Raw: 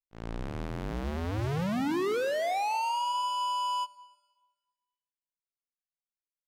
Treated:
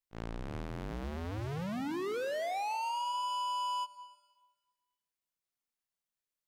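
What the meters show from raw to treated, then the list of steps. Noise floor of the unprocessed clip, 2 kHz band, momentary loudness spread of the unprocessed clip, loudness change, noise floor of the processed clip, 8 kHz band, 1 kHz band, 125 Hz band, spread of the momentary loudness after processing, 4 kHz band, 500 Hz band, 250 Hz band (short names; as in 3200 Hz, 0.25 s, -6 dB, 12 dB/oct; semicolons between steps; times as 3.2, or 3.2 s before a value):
under -85 dBFS, -6.0 dB, 9 LU, -5.5 dB, under -85 dBFS, -5.0 dB, -5.0 dB, -6.0 dB, 9 LU, -4.5 dB, -6.0 dB, -6.5 dB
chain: compressor 6:1, threshold -37 dBFS, peak gain reduction 10 dB; gain +2.5 dB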